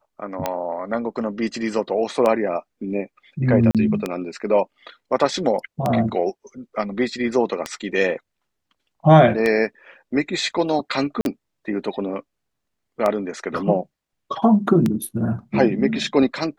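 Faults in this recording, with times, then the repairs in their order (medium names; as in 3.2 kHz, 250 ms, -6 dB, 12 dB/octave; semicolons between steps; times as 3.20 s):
tick 33 1/3 rpm -8 dBFS
3.71–3.75 s: dropout 37 ms
11.21–11.25 s: dropout 42 ms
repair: de-click; interpolate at 3.71 s, 37 ms; interpolate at 11.21 s, 42 ms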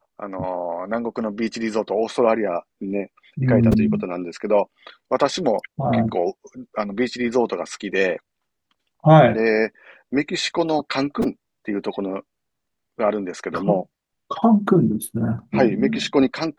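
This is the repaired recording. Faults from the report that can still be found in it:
nothing left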